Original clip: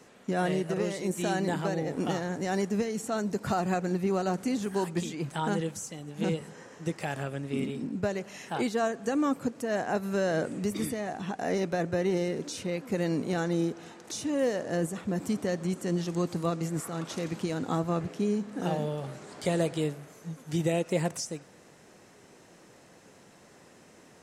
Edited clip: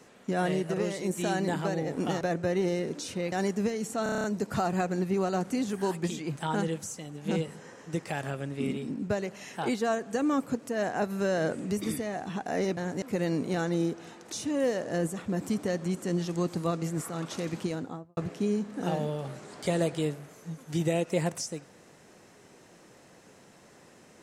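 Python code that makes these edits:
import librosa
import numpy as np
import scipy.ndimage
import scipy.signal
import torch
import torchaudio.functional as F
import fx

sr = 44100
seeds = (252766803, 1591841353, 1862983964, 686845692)

y = fx.studio_fade_out(x, sr, start_s=17.39, length_s=0.57)
y = fx.edit(y, sr, fx.swap(start_s=2.21, length_s=0.25, other_s=11.7, other_length_s=1.11),
    fx.stutter(start_s=3.17, slice_s=0.03, count=8), tone=tone)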